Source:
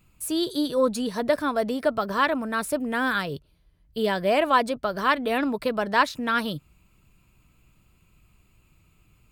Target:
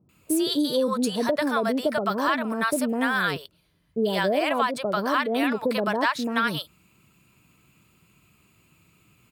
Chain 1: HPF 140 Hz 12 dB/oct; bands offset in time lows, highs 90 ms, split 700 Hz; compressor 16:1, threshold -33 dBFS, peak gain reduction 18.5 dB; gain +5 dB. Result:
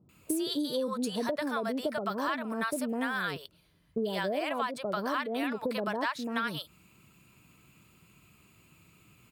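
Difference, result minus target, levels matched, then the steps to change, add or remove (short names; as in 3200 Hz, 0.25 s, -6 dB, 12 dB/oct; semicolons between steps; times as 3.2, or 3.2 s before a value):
compressor: peak gain reduction +8.5 dB
change: compressor 16:1, threshold -24 dBFS, peak gain reduction 10 dB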